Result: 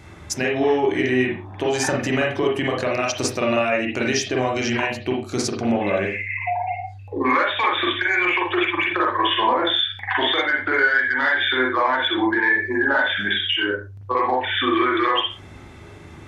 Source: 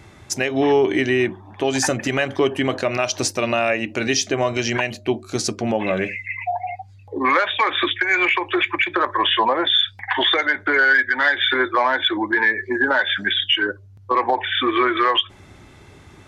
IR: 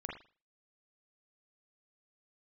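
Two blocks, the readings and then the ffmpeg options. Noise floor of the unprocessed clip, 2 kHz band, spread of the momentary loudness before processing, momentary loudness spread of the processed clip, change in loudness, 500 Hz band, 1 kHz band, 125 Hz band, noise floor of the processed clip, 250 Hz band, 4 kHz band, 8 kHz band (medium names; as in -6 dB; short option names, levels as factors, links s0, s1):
-46 dBFS, -1.0 dB, 8 LU, 7 LU, -1.0 dB, -1.0 dB, -0.5 dB, 0.0 dB, -41 dBFS, +0.5 dB, -2.5 dB, -3.5 dB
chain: -filter_complex "[0:a]acompressor=threshold=0.0708:ratio=2[s0];[1:a]atrim=start_sample=2205,afade=t=out:st=0.24:d=0.01,atrim=end_sample=11025[s1];[s0][s1]afir=irnorm=-1:irlink=0,volume=1.58"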